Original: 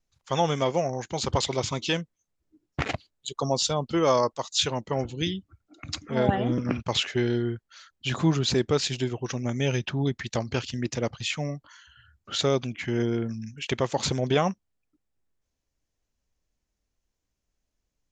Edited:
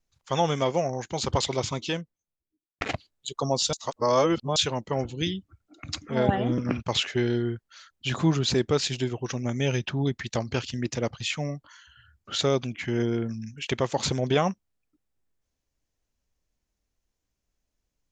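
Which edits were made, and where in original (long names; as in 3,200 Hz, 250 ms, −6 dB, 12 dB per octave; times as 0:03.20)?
0:01.55–0:02.81: fade out and dull
0:03.73–0:04.56: reverse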